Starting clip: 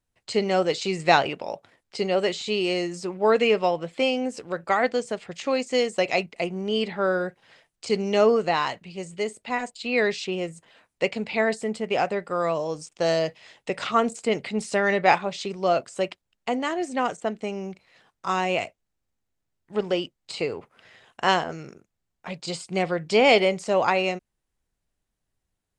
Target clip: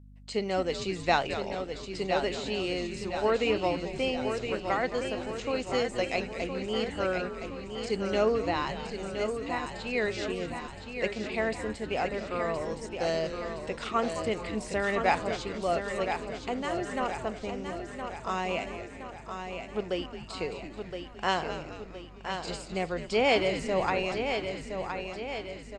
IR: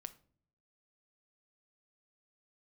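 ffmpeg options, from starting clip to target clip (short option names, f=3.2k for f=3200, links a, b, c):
-filter_complex "[0:a]asplit=2[a][b];[b]asplit=5[c][d][e][f][g];[c]adelay=217,afreqshift=-140,volume=-11dB[h];[d]adelay=434,afreqshift=-280,volume=-17.4dB[i];[e]adelay=651,afreqshift=-420,volume=-23.8dB[j];[f]adelay=868,afreqshift=-560,volume=-30.1dB[k];[g]adelay=1085,afreqshift=-700,volume=-36.5dB[l];[h][i][j][k][l]amix=inputs=5:normalize=0[m];[a][m]amix=inputs=2:normalize=0,aeval=exprs='val(0)+0.00708*(sin(2*PI*50*n/s)+sin(2*PI*2*50*n/s)/2+sin(2*PI*3*50*n/s)/3+sin(2*PI*4*50*n/s)/4+sin(2*PI*5*50*n/s)/5)':c=same,asplit=2[n][o];[o]aecho=0:1:1017|2034|3051|4068|5085|6102:0.447|0.237|0.125|0.0665|0.0352|0.0187[p];[n][p]amix=inputs=2:normalize=0,volume=-7dB"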